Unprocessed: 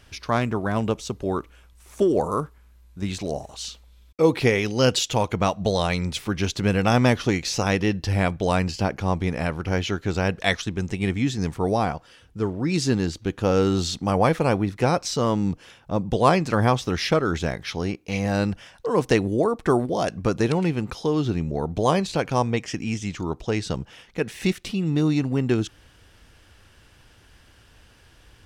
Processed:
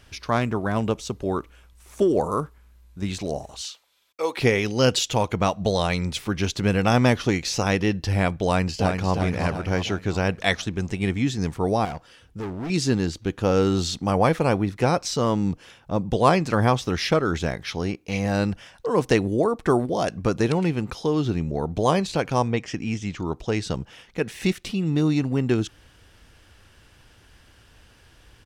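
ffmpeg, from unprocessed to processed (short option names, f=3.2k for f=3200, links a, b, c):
-filter_complex "[0:a]asettb=1/sr,asplit=3[a][b][c];[a]atrim=end=3.614[d];[b]atrim=start=3.61:end=4.38,asetpts=PTS-STARTPTS,afade=t=in:d=0.004:c=qsin,afade=t=out:st=0.766:d=0.004:c=qsin,highpass=690[e];[c]atrim=start=4.376[f];[d][e]acrossfade=d=0.004:c1=hsin:c2=qsin[g];[g][f]acrossfade=d=0.004:c1=qsin:c2=hsin,asplit=2[h][i];[i]afade=t=in:st=8.44:d=0.01,afade=t=out:st=9.12:d=0.01,aecho=0:1:350|700|1050|1400|1750|2100:0.530884|0.265442|0.132721|0.0663606|0.0331803|0.0165901[j];[h][j]amix=inputs=2:normalize=0,asettb=1/sr,asplit=3[k][l][m];[k]atrim=end=11.854[n];[l]atrim=start=11.85:end=12.7,asetpts=PTS-STARTPTS,afade=t=in:d=0.004:c=qsin,afade=t=out:st=0.846:d=0.004:c=qsin,asoftclip=type=hard:threshold=-28dB[o];[m]atrim=start=12.696[p];[n][o]acrossfade=d=0.004:c1=hsin:c2=qsin[q];[q][p]acrossfade=d=0.004:c1=qsin:c2=hsin,asettb=1/sr,asplit=3[r][s][t];[r]atrim=end=22.484[u];[s]atrim=start=22.48:end=23.25,asetpts=PTS-STARTPTS,afade=t=in:d=0.004:c=qsin,afade=t=out:st=0.766:d=0.004:c=qsin,highshelf=f=7.4k:g=-10.5[v];[t]atrim=start=23.246[w];[u][v]acrossfade=d=0.004:c1=hsin:c2=qsin[x];[x][w]acrossfade=d=0.004:c1=qsin:c2=hsin"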